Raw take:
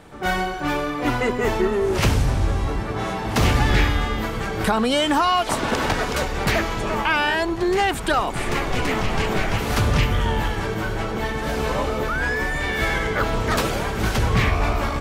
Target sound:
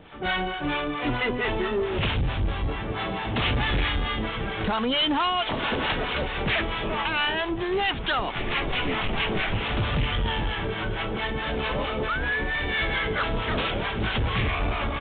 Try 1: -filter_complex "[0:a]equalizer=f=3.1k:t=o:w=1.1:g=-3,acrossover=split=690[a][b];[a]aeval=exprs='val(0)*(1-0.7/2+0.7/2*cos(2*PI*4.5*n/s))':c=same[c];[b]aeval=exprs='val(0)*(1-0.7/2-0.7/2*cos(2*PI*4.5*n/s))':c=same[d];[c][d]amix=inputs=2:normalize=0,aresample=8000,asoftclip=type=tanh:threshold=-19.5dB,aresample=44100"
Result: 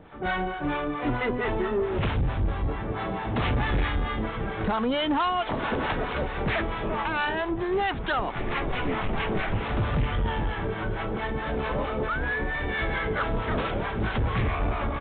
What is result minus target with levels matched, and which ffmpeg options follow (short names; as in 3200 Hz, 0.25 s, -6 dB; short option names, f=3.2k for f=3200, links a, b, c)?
4000 Hz band -7.5 dB
-filter_complex "[0:a]equalizer=f=3.1k:t=o:w=1.1:g=8,acrossover=split=690[a][b];[a]aeval=exprs='val(0)*(1-0.7/2+0.7/2*cos(2*PI*4.5*n/s))':c=same[c];[b]aeval=exprs='val(0)*(1-0.7/2-0.7/2*cos(2*PI*4.5*n/s))':c=same[d];[c][d]amix=inputs=2:normalize=0,aresample=8000,asoftclip=type=tanh:threshold=-19.5dB,aresample=44100"